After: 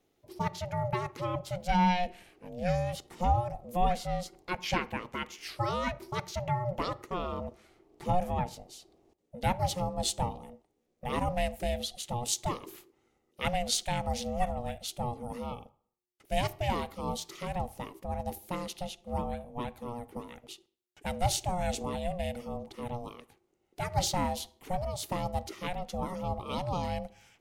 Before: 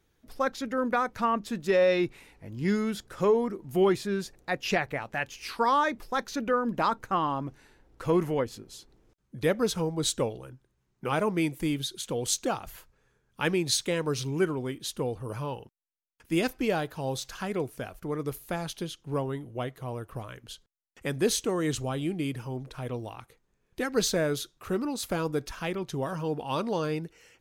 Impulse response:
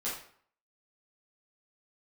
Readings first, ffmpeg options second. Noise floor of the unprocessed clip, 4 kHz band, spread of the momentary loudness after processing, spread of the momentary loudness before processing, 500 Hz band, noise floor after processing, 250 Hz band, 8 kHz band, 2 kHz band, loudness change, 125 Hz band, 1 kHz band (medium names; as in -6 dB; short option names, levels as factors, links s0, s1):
-74 dBFS, -2.5 dB, 12 LU, 12 LU, -7.0 dB, -76 dBFS, -7.0 dB, -3.0 dB, -6.0 dB, -4.0 dB, -0.5 dB, 0.0 dB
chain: -filter_complex "[0:a]asuperstop=centerf=1200:order=4:qfactor=1.6,asplit=2[s0][s1];[1:a]atrim=start_sample=2205,highshelf=f=2500:g=-9.5,adelay=30[s2];[s1][s2]afir=irnorm=-1:irlink=0,volume=0.0944[s3];[s0][s3]amix=inputs=2:normalize=0,aeval=exprs='val(0)*sin(2*PI*360*n/s)':c=same"